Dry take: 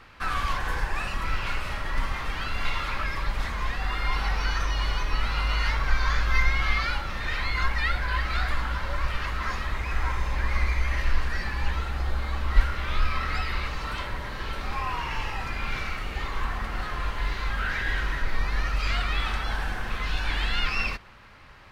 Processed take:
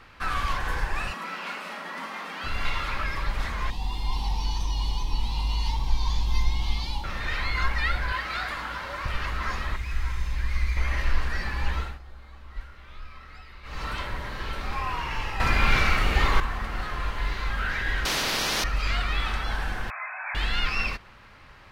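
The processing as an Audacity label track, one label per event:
1.130000	2.440000	Chebyshev high-pass with heavy ripple 170 Hz, ripple 3 dB
3.700000	7.040000	drawn EQ curve 270 Hz 0 dB, 620 Hz −13 dB, 910 Hz +4 dB, 1,400 Hz −29 dB, 3,300 Hz 0 dB
8.120000	9.060000	high-pass filter 270 Hz 6 dB per octave
9.760000	10.770000	parametric band 640 Hz −12.5 dB 2.8 octaves
11.800000	13.820000	duck −17.5 dB, fades 0.19 s
15.400000	16.400000	clip gain +9.5 dB
18.050000	18.640000	every bin compressed towards the loudest bin 10 to 1
19.900000	20.350000	linear-phase brick-wall band-pass 580–2,600 Hz

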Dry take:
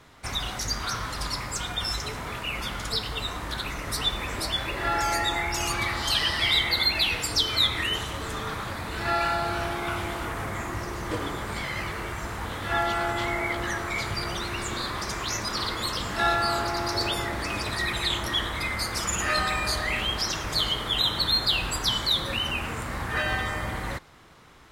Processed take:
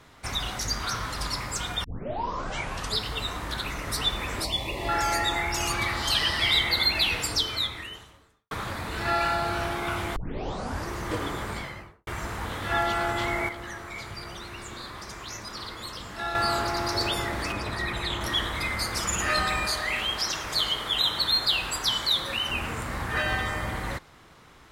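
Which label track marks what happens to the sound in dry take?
1.840000	1.840000	tape start 1.16 s
4.440000	4.890000	Butterworth band-reject 1,500 Hz, Q 1.4
7.260000	8.510000	fade out quadratic
10.160000	10.160000	tape start 0.73 s
11.420000	12.070000	fade out and dull
13.490000	16.350000	clip gain −8.5 dB
17.520000	18.210000	high-shelf EQ 2,800 Hz −8.5 dB
19.660000	22.510000	low-shelf EQ 320 Hz −8.5 dB

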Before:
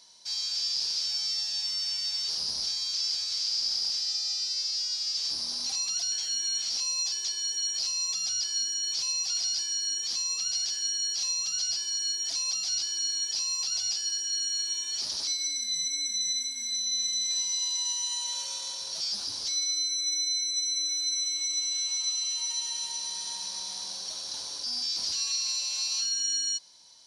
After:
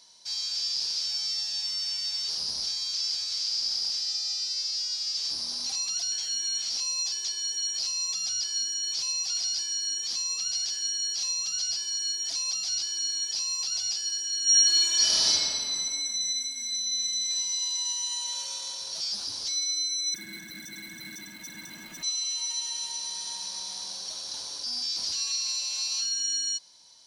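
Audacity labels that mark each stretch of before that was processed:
14.430000	15.290000	thrown reverb, RT60 2.5 s, DRR −12 dB
20.140000	22.030000	running median over 9 samples

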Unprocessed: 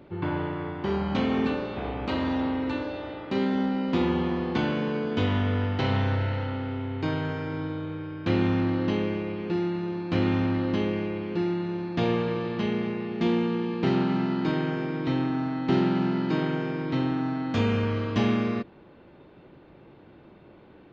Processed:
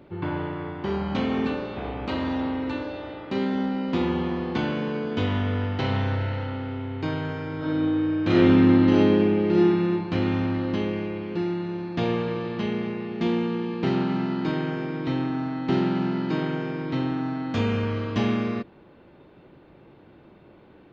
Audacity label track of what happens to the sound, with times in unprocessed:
7.570000	9.910000	thrown reverb, RT60 1 s, DRR −5.5 dB

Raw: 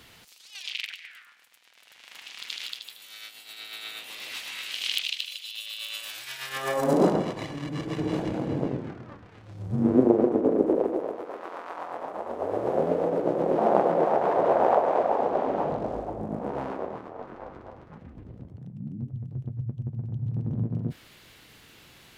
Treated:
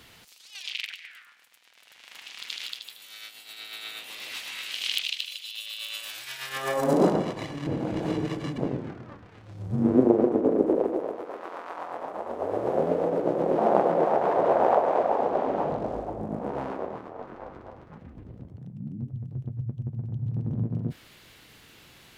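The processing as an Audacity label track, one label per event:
7.670000	8.580000	reverse

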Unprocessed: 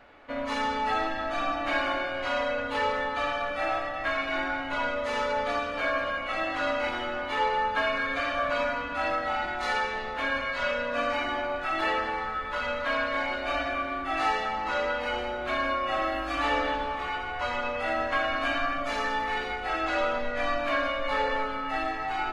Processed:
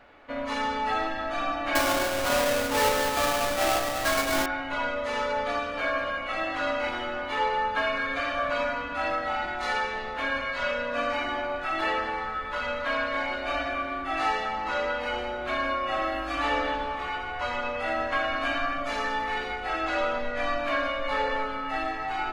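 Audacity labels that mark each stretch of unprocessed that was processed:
1.750000	4.460000	each half-wave held at its own peak

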